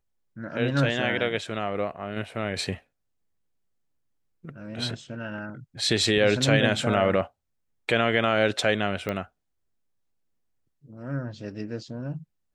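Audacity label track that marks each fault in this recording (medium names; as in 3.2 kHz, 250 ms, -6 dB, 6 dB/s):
9.090000	9.090000	pop -16 dBFS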